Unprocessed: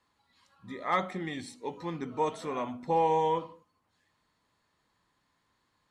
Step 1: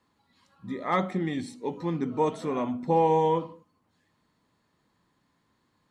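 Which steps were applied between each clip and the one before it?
parametric band 210 Hz +9 dB 2.5 octaves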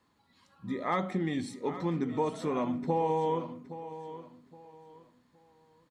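downward compressor 3 to 1, threshold −27 dBFS, peak gain reduction 7.5 dB
repeating echo 818 ms, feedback 28%, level −13.5 dB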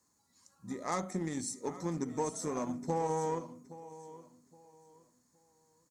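harmonic generator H 7 −26 dB, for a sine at −16.5 dBFS
high shelf with overshoot 4,600 Hz +13 dB, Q 3
level −3.5 dB

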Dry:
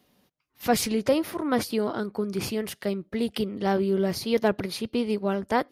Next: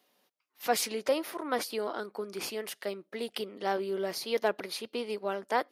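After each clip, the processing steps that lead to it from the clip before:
high-pass filter 440 Hz 12 dB per octave
level −3 dB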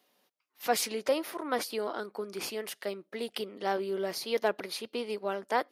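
no processing that can be heard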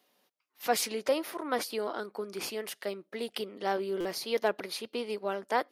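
buffer that repeats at 0:04.00, samples 256, times 8

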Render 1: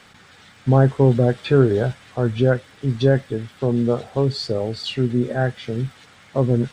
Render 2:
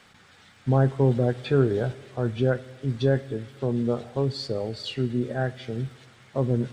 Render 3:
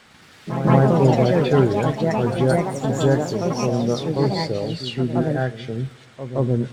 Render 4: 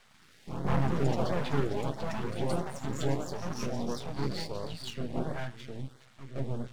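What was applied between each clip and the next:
convolution reverb RT60 1.7 s, pre-delay 18 ms, DRR 18 dB; level −6 dB
delay with pitch and tempo change per echo 108 ms, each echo +4 semitones, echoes 3; backwards echo 171 ms −10.5 dB; level +3.5 dB
half-wave rectification; auto-filter notch saw up 1.5 Hz 250–2,900 Hz; level −7 dB

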